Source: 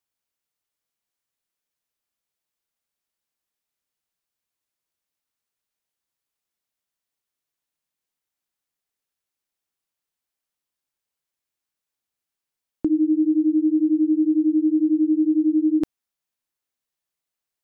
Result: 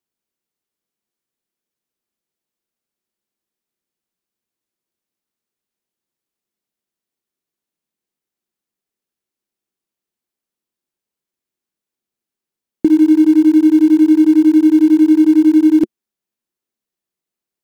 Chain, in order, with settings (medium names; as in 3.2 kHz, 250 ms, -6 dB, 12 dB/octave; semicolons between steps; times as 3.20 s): in parallel at -10.5 dB: bit crusher 4-bit; on the sum: small resonant body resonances 220/350 Hz, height 11 dB, ringing for 30 ms; trim -1 dB